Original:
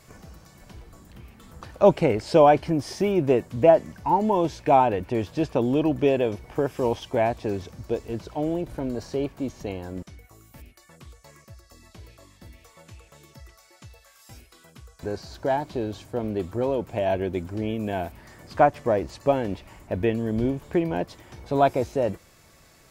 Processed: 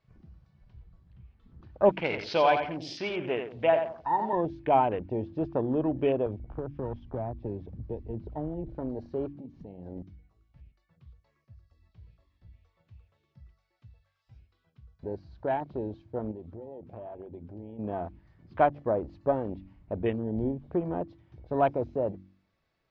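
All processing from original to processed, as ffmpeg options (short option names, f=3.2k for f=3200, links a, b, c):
-filter_complex "[0:a]asettb=1/sr,asplit=3[a][b][c];[a]atrim=end=1.894[d];[b]atrim=start=1.89:end=4.33,asetpts=PTS-STARTPTS,afade=t=in:d=0.004:c=qsin,afade=t=out:st=2.436:d=0.004:c=qsin,tiltshelf=f=930:g=-9.5,aecho=1:1:87|174|261|348:0.447|0.143|0.0457|0.0146,atrim=end_sample=107604[e];[c]atrim=start=4.326[f];[d][e]acrossfade=d=0.004:c1=hsin:c2=qsin[g];[g][f]acrossfade=d=0.004:c1=qsin:c2=hsin,asettb=1/sr,asplit=3[h][i][j];[h]atrim=end=6.264[k];[i]atrim=start=6.26:end=8.69,asetpts=PTS-STARTPTS,afade=t=in:d=0.004:c=qsin,afade=t=out:st=2.426:d=0.004:c=qsin,aemphasis=mode=reproduction:type=bsi,acrossover=split=200|1400[l][m][n];[l]acompressor=threshold=-33dB:ratio=4[o];[m]acompressor=threshold=-29dB:ratio=4[p];[n]acompressor=threshold=-44dB:ratio=4[q];[o][p][q]amix=inputs=3:normalize=0,asoftclip=type=hard:threshold=-20.5dB[r];[j]atrim=start=8.686[s];[k][r]acrossfade=d=0.004:c1=hsin:c2=qsin[t];[t][s]acrossfade=d=0.004:c1=qsin:c2=hsin,asettb=1/sr,asplit=3[u][v][w];[u]atrim=end=9.334[x];[v]atrim=start=9.33:end=9.86,asetpts=PTS-STARTPTS,afade=t=in:d=0.004:c=qsin,afade=t=out:st=0.526:d=0.004:c=qsin,equalizer=f=180:w=1.9:g=8.5,acompressor=threshold=-34dB:ratio=8:attack=3.2:release=140:knee=1:detection=peak[y];[w]atrim=start=9.856[z];[x][y]acrossfade=d=0.004:c1=hsin:c2=qsin[aa];[aa][z]acrossfade=d=0.004:c1=qsin:c2=hsin,asettb=1/sr,asplit=3[ab][ac][ad];[ab]atrim=end=16.314[ae];[ac]atrim=start=16.31:end=17.79,asetpts=PTS-STARTPTS,afade=t=in:d=0.004:c=qsin,afade=t=out:st=1.476:d=0.004:c=qsin,bandreject=f=60:t=h:w=6,bandreject=f=120:t=h:w=6,bandreject=f=180:t=h:w=6,bandreject=f=240:t=h:w=6,acompressor=threshold=-33dB:ratio=12:attack=3.2:release=140:knee=1:detection=peak[af];[ad]atrim=start=17.786[ag];[ae][af]acrossfade=d=0.004:c1=hsin:c2=qsin[ah];[ah][ag]acrossfade=d=0.004:c1=qsin:c2=hsin,afwtdn=0.0178,lowpass=f=4.3k:w=0.5412,lowpass=f=4.3k:w=1.3066,bandreject=f=47.66:t=h:w=4,bandreject=f=95.32:t=h:w=4,bandreject=f=142.98:t=h:w=4,bandreject=f=190.64:t=h:w=4,bandreject=f=238.3:t=h:w=4,bandreject=f=285.96:t=h:w=4,bandreject=f=333.62:t=h:w=4,volume=-5dB"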